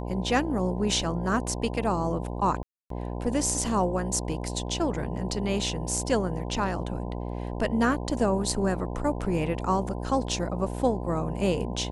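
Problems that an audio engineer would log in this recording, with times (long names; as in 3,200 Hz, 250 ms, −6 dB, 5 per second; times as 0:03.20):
mains buzz 60 Hz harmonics 17 −33 dBFS
0:02.63–0:02.90: drop-out 273 ms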